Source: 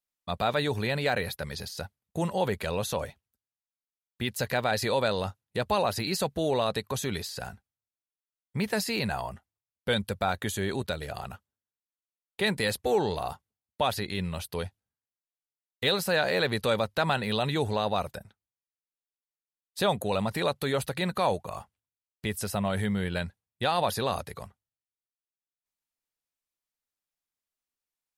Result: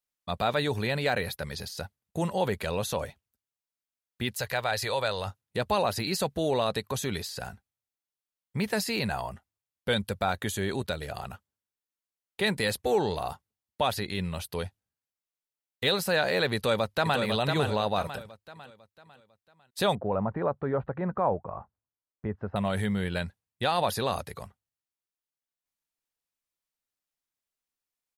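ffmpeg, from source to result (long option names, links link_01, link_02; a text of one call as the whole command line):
ffmpeg -i in.wav -filter_complex "[0:a]asettb=1/sr,asplit=3[link_01][link_02][link_03];[link_01]atrim=end=4.354[link_04];[link_02]atrim=start=4.35:end=5.27,asetpts=PTS-STARTPTS,afade=type=in:duration=0.004:curve=qsin,afade=type=out:start_time=0.916:duration=0.004:curve=qsin,equalizer=frequency=250:width_type=o:width=1.3:gain=-12.5[link_05];[link_03]atrim=start=5.266[link_06];[link_04][link_05]acrossfade=duration=0.004:curve1=hsin:curve2=qsin[link_07];[link_07][link_06]acrossfade=duration=0.004:curve1=qsin:curve2=hsin,asplit=2[link_08][link_09];[link_09]afade=type=in:start_time=16.55:duration=0.01,afade=type=out:start_time=17.2:duration=0.01,aecho=0:1:500|1000|1500|2000|2500:0.562341|0.224937|0.0899746|0.0359898|0.0143959[link_10];[link_08][link_10]amix=inputs=2:normalize=0,asettb=1/sr,asplit=3[link_11][link_12][link_13];[link_11]atrim=end=19.954[link_14];[link_12]atrim=start=19.95:end=22.56,asetpts=PTS-STARTPTS,afade=type=in:duration=0.004:curve=qsin,afade=type=out:start_time=2.606:duration=0.004:curve=qsin,lowpass=frequency=1400:width=0.5412,lowpass=frequency=1400:width=1.3066[link_15];[link_13]atrim=start=22.556[link_16];[link_14][link_15]acrossfade=duration=0.004:curve1=hsin:curve2=qsin[link_17];[link_17][link_16]acrossfade=duration=0.004:curve1=qsin:curve2=hsin" out.wav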